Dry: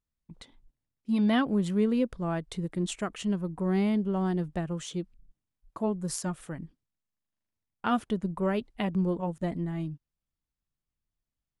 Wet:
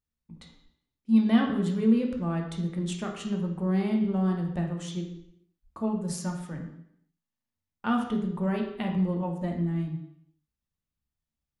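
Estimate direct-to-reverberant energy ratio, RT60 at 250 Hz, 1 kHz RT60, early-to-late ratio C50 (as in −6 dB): 1.0 dB, 0.70 s, 0.70 s, 5.5 dB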